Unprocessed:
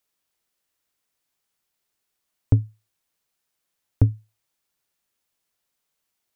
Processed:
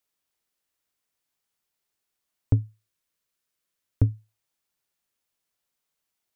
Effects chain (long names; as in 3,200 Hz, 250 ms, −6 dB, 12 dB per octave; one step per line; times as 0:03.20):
0:02.61–0:04.15: parametric band 800 Hz −8.5 dB 0.26 octaves
level −3.5 dB